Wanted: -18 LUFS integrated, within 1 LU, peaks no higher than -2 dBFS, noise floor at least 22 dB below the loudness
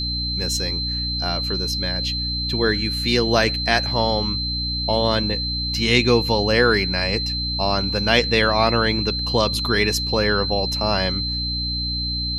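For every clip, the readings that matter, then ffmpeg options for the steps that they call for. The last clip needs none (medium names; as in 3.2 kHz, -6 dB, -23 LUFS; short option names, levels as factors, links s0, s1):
hum 60 Hz; highest harmonic 300 Hz; hum level -26 dBFS; steady tone 4.1 kHz; tone level -24 dBFS; loudness -20.0 LUFS; peak level -2.5 dBFS; loudness target -18.0 LUFS
-> -af "bandreject=f=60:t=h:w=4,bandreject=f=120:t=h:w=4,bandreject=f=180:t=h:w=4,bandreject=f=240:t=h:w=4,bandreject=f=300:t=h:w=4"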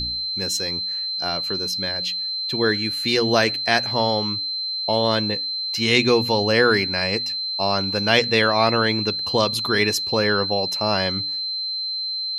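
hum not found; steady tone 4.1 kHz; tone level -24 dBFS
-> -af "bandreject=f=4100:w=30"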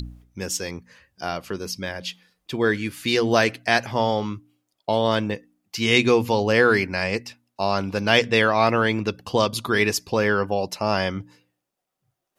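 steady tone not found; loudness -22.0 LUFS; peak level -3.0 dBFS; loudness target -18.0 LUFS
-> -af "volume=1.58,alimiter=limit=0.794:level=0:latency=1"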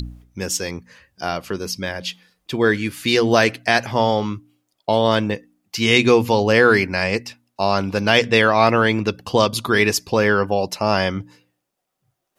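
loudness -18.5 LUFS; peak level -2.0 dBFS; noise floor -77 dBFS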